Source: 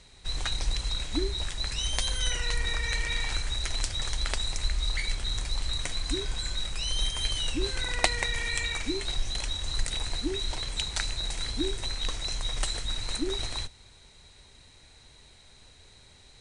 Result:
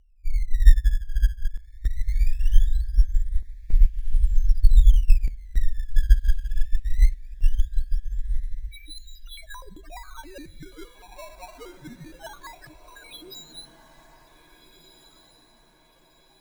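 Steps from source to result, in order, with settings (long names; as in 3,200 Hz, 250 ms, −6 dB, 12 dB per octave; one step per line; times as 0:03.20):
spectral tilt −2 dB per octave, from 0:08.71 +3 dB per octave
spectral peaks only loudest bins 1
square-wave tremolo 0.54 Hz, depth 65%, duty 85%
sample-and-hold swept by an LFO 15×, swing 160% 0.2 Hz
feedback delay with all-pass diffusion 1,600 ms, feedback 48%, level −11 dB
dense smooth reverb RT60 1.2 s, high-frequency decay 0.95×, DRR 19.5 dB
boost into a limiter +15.5 dB
expander for the loud parts 2.5 to 1, over −16 dBFS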